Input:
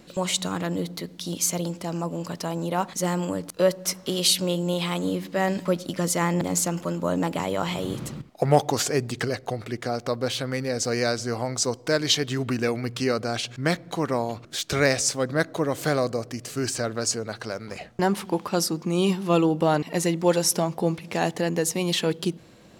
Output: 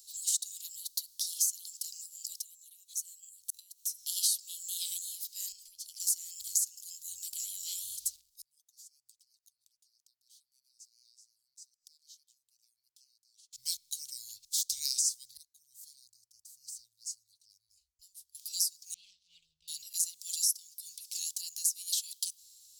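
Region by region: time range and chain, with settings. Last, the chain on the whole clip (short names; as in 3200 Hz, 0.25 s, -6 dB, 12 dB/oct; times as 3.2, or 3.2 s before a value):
2.39–4.04 bell 4900 Hz -10 dB 0.2 oct + compressor, threshold -38 dBFS
5.52–6 high shelf 5700 Hz -8.5 dB + notch 3800 Hz, Q 9 + compressor 8:1, threshold -29 dBFS
8.16–13.53 compressor 1.5:1, threshold -29 dBFS + flipped gate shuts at -26 dBFS, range -30 dB + core saturation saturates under 1400 Hz
15.37–18.35 passive tone stack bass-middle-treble 10-0-1 + mismatched tape noise reduction decoder only
18.94–19.68 tape spacing loss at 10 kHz 44 dB + Doppler distortion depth 0.17 ms
whole clip: inverse Chebyshev band-stop 200–1500 Hz, stop band 60 dB; pre-emphasis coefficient 0.97; compressor 5:1, threshold -36 dBFS; gain +8 dB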